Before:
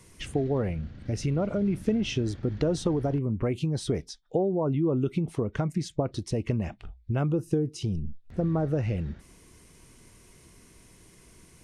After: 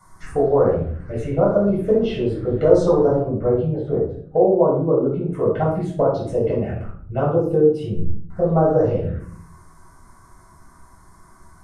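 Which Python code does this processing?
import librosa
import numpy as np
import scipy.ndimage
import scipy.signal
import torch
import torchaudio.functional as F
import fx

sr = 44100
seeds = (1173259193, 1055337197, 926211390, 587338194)

y = fx.band_shelf(x, sr, hz=800.0, db=13.0, octaves=2.3)
y = fx.env_phaser(y, sr, low_hz=460.0, high_hz=2700.0, full_db=-15.0)
y = fx.spacing_loss(y, sr, db_at_10k=36, at=(3.28, 5.33))
y = fx.room_shoebox(y, sr, seeds[0], volume_m3=670.0, walls='furnished', distance_m=7.1)
y = y * librosa.db_to_amplitude(-7.5)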